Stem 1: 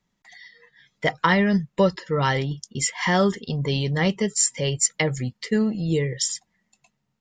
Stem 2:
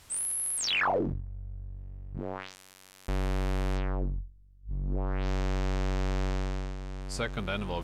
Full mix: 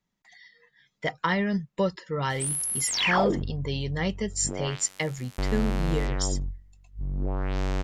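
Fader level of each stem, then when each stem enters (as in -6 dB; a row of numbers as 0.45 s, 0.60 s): -6.5 dB, +2.5 dB; 0.00 s, 2.30 s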